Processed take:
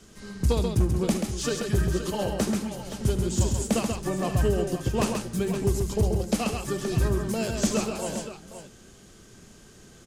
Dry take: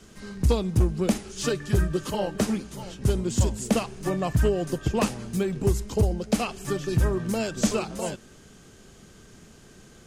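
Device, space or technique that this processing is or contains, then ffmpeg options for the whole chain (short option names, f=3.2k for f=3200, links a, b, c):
exciter from parts: -filter_complex "[0:a]aecho=1:1:73|134|522:0.2|0.562|0.282,asplit=2[a][b];[b]highpass=3k,asoftclip=type=tanh:threshold=-26.5dB,volume=-10dB[c];[a][c]amix=inputs=2:normalize=0,volume=-2dB"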